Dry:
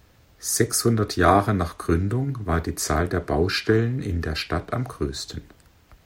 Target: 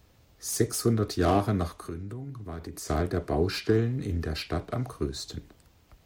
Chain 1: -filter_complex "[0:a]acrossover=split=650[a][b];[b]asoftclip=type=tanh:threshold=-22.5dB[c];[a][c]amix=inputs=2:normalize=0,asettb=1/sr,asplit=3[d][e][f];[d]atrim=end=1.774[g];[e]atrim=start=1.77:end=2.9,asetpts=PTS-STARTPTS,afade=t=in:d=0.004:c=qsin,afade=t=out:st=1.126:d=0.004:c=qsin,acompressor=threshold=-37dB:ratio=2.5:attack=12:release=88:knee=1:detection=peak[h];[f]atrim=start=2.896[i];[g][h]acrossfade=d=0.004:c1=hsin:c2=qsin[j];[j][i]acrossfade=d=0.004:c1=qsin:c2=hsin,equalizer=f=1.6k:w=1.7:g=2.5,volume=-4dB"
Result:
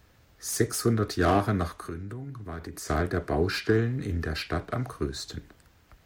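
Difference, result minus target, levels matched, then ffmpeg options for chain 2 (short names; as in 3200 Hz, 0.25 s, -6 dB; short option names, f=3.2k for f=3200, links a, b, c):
2000 Hz band +5.5 dB
-filter_complex "[0:a]acrossover=split=650[a][b];[b]asoftclip=type=tanh:threshold=-22.5dB[c];[a][c]amix=inputs=2:normalize=0,asettb=1/sr,asplit=3[d][e][f];[d]atrim=end=1.774[g];[e]atrim=start=1.77:end=2.9,asetpts=PTS-STARTPTS,afade=t=in:d=0.004:c=qsin,afade=t=out:st=1.126:d=0.004:c=qsin,acompressor=threshold=-37dB:ratio=2.5:attack=12:release=88:knee=1:detection=peak[h];[f]atrim=start=2.896[i];[g][h]acrossfade=d=0.004:c1=hsin:c2=qsin[j];[j][i]acrossfade=d=0.004:c1=qsin:c2=hsin,equalizer=f=1.6k:w=1.7:g=-4.5,volume=-4dB"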